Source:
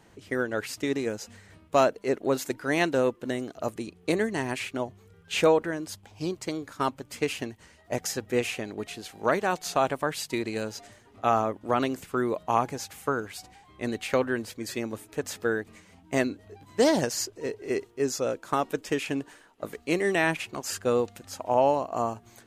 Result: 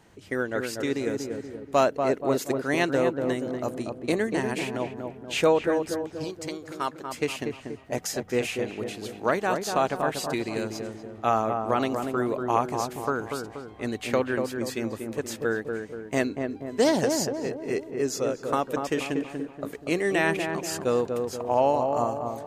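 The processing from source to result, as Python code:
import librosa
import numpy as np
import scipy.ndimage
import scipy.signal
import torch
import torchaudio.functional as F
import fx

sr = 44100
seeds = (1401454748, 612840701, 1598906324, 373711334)

y = fx.low_shelf(x, sr, hz=390.0, db=-11.0, at=(6.24, 7.07))
y = fx.echo_filtered(y, sr, ms=239, feedback_pct=55, hz=1100.0, wet_db=-4)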